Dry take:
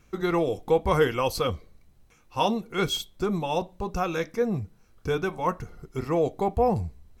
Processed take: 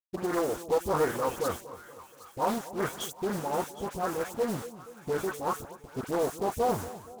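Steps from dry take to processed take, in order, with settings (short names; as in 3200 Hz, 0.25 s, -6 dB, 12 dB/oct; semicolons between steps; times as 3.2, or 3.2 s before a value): level-crossing sampler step -28 dBFS; HPF 250 Hz 6 dB/oct; band shelf 3100 Hz -9.5 dB; in parallel at -1.5 dB: limiter -22 dBFS, peak gain reduction 10.5 dB; on the sum: dispersion highs, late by 0.11 s, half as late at 1700 Hz; short-mantissa float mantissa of 2-bit; split-band echo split 930 Hz, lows 0.237 s, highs 0.766 s, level -15.5 dB; Doppler distortion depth 0.38 ms; gain -5.5 dB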